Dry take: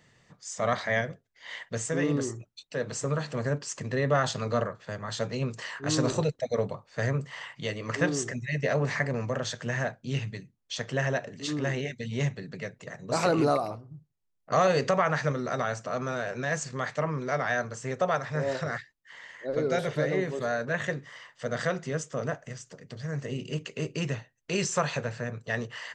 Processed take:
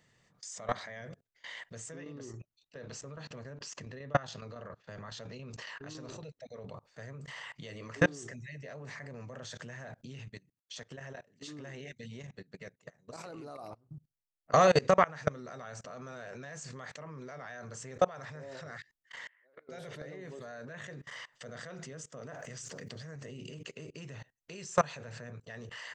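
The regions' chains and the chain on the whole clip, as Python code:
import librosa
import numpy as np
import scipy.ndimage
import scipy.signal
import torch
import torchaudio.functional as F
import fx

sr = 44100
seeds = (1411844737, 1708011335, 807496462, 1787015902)

y = fx.chain(x, sr, fx.lowpass(hz=6500.0, slope=24),
    fx.peak_eq(hz=2700.0, db=3.0, octaves=0.21),
    fx.tremolo_shape(shape='saw_down', hz=7.2, depth_pct=70), at=(1.92, 6.74))
y = fx.chain(y, sr, fx.highpass(hz=83.0, slope=6),
    fx.level_steps(step_db=13), at=(10.28, 13.91))
y = fx.chain(y, sr, fx.lowpass(hz=2200.0, slope=24),
    fx.differentiator(),
    fx.pre_swell(db_per_s=26.0), at=(19.27, 19.69))
y = fx.chain(y, sr, fx.low_shelf(hz=81.0, db=-11.0),
    fx.env_flatten(amount_pct=50), at=(22.21, 23.16))
y = fx.high_shelf(y, sr, hz=5600.0, db=3.0)
y = fx.level_steps(y, sr, step_db=24)
y = y * 10.0 ** (3.0 / 20.0)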